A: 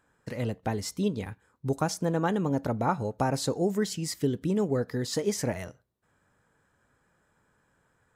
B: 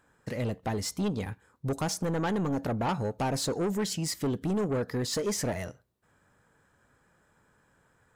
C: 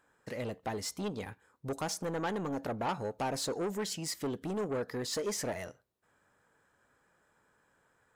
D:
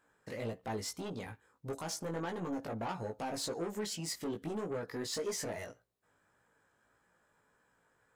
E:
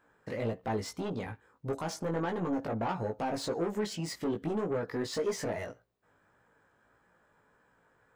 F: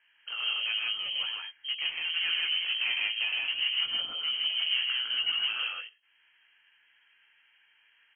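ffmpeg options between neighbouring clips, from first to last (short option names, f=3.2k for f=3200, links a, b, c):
-af "asoftclip=type=tanh:threshold=-27.5dB,volume=3dB"
-af "bass=f=250:g=-8,treble=f=4k:g=-1,volume=-3dB"
-af "alimiter=level_in=4.5dB:limit=-24dB:level=0:latency=1:release=49,volume=-4.5dB,flanger=delay=17:depth=2.1:speed=1.7,volume=1dB"
-af "equalizer=f=12k:t=o:w=2.3:g=-11.5,volume=6dB"
-af "lowpass=f=2.8k:t=q:w=0.5098,lowpass=f=2.8k:t=q:w=0.6013,lowpass=f=2.8k:t=q:w=0.9,lowpass=f=2.8k:t=q:w=2.563,afreqshift=-3300,aecho=1:1:102|157.4:0.501|0.891"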